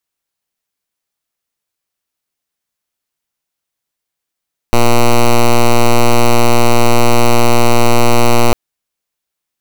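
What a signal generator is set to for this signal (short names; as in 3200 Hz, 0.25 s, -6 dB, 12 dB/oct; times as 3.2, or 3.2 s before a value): pulse 119 Hz, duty 7% -6.5 dBFS 3.80 s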